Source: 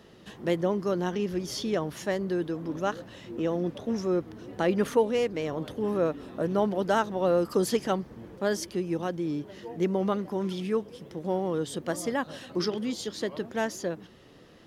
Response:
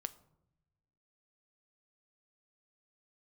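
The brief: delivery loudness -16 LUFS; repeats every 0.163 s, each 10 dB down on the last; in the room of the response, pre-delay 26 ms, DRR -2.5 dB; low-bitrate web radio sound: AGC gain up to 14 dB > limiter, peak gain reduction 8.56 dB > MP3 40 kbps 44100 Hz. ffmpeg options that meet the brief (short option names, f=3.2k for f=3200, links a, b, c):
-filter_complex "[0:a]aecho=1:1:163|326|489|652:0.316|0.101|0.0324|0.0104,asplit=2[a][b];[1:a]atrim=start_sample=2205,adelay=26[c];[b][c]afir=irnorm=-1:irlink=0,volume=4.5dB[d];[a][d]amix=inputs=2:normalize=0,dynaudnorm=m=14dB,alimiter=limit=-13.5dB:level=0:latency=1,volume=10.5dB" -ar 44100 -c:a libmp3lame -b:a 40k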